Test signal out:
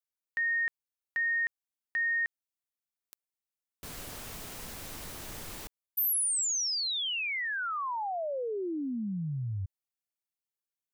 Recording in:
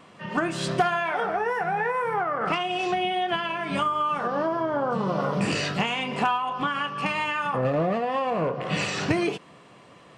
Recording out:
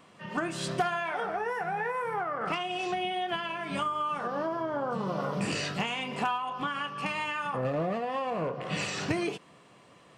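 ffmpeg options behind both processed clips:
-af "highshelf=f=6700:g=6.5,volume=0.501"

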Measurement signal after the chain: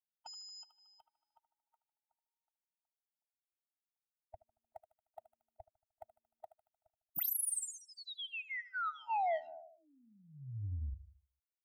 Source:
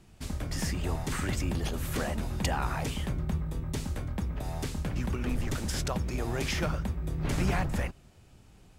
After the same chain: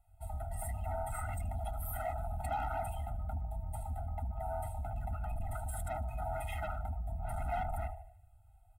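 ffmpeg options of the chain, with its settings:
-af "firequalizer=gain_entry='entry(100,0);entry(170,-24);entry(250,-26);entry(370,-28);entry(560,11);entry(1700,-3);entry(3600,-6);entry(5600,-20);entry(8300,5);entry(14000,11)':delay=0.05:min_phase=1,aecho=1:1:76|152|228|304|380|456:0.211|0.12|0.0687|0.0391|0.0223|0.0127,asoftclip=type=tanh:threshold=0.0299,afftdn=nr=14:nf=-43,lowshelf=f=150:g=-2,afftfilt=real='re*eq(mod(floor(b*sr/1024/310),2),0)':imag='im*eq(mod(floor(b*sr/1024/310),2),0)':win_size=1024:overlap=0.75"

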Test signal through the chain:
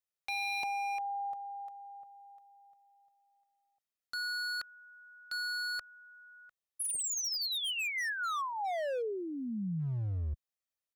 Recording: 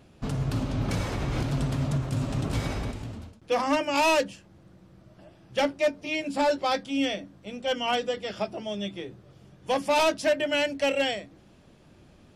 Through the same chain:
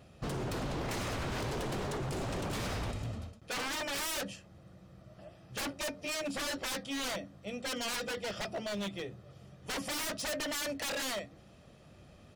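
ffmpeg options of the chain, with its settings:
-af "highpass=f=47:p=1,aecho=1:1:1.6:0.4,aeval=exprs='0.0335*(abs(mod(val(0)/0.0335+3,4)-2)-1)':c=same,volume=0.841"

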